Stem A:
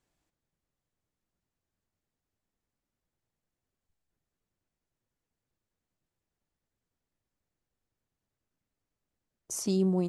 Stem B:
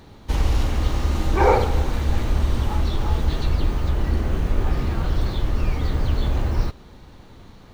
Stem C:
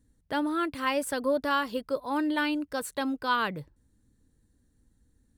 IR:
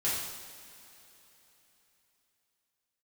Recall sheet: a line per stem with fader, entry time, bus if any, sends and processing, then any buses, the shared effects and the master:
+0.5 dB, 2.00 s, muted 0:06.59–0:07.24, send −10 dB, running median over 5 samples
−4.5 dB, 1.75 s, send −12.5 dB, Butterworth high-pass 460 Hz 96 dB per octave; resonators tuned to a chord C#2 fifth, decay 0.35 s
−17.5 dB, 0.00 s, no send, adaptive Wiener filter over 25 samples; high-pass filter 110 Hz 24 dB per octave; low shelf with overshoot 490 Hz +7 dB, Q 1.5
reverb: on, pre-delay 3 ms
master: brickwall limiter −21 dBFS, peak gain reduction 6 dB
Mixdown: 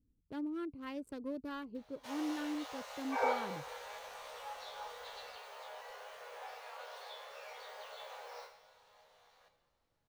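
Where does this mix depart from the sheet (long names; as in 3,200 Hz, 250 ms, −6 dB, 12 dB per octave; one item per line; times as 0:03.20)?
stem C: missing high-pass filter 110 Hz 24 dB per octave
master: missing brickwall limiter −21 dBFS, peak gain reduction 6 dB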